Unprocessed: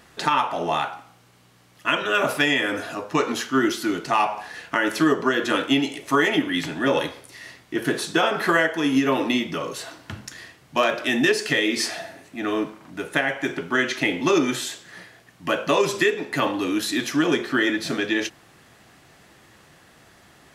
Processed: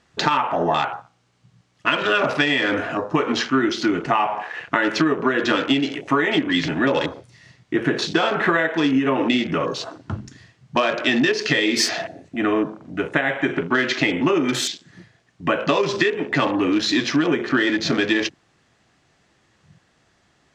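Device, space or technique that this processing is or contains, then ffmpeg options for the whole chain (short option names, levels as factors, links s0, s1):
ASMR close-microphone chain: -af "lowpass=f=7300:w=0.5412,lowpass=f=7300:w=1.3066,lowshelf=f=190:g=3,acompressor=threshold=0.0794:ratio=6,highshelf=f=7400:g=7,afwtdn=0.0141,volume=2.11"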